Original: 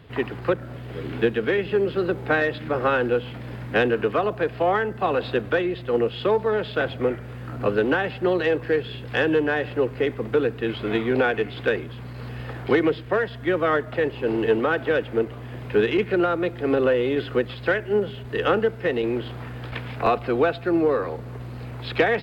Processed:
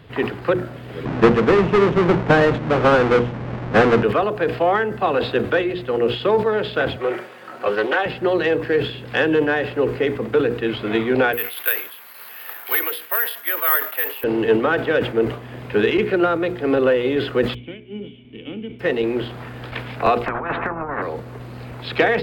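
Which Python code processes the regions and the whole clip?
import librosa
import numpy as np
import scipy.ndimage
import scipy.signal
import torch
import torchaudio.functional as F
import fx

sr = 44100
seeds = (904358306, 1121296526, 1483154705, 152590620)

y = fx.chain(x, sr, fx.halfwave_hold(),
    fx.lowpass(hz=2000.0, slope=12),
    fx.peak_eq(hz=170.0, db=6.5, octaves=0.4), at=(1.05, 4.03))
y = fx.chain(y, sr, fx.highpass(hz=450.0, slope=12),
    fx.comb(ms=5.4, depth=0.49),
    fx.doppler_dist(depth_ms=0.14), at=(6.96, 8.06))
y = fx.chain(y, sr, fx.highpass(hz=1100.0, slope=12),
    fx.resample_bad(factor=3, down='none', up='zero_stuff'), at=(11.33, 14.24))
y = fx.envelope_flatten(y, sr, power=0.6, at=(17.53, 18.79), fade=0.02)
y = fx.formant_cascade(y, sr, vowel='i', at=(17.53, 18.79), fade=0.02)
y = fx.chain(y, sr, fx.lowpass(hz=1100.0, slope=24),
    fx.over_compress(threshold_db=-26.0, ratio=-0.5),
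    fx.spectral_comp(ratio=10.0), at=(20.26, 21.02))
y = fx.hum_notches(y, sr, base_hz=60, count=8)
y = fx.sustainer(y, sr, db_per_s=110.0)
y = y * 10.0 ** (3.5 / 20.0)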